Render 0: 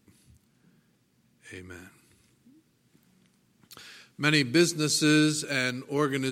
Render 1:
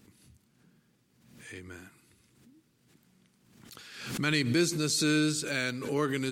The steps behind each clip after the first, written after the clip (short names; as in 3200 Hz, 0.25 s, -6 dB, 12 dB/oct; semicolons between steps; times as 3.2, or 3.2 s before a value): in parallel at 0 dB: limiter -18.5 dBFS, peak gain reduction 10.5 dB; on the sum: backwards sustainer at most 63 dB/s; gain -8 dB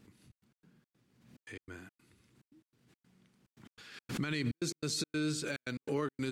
high shelf 5200 Hz -8.5 dB; limiter -23.5 dBFS, peak gain reduction 9 dB; step gate "xxx.x.xx.x" 143 bpm -60 dB; gain -1.5 dB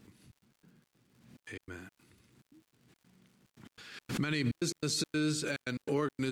crackle 140/s -59 dBFS; gain +2.5 dB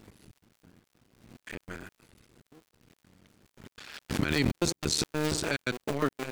cycle switcher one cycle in 2, muted; gain +7 dB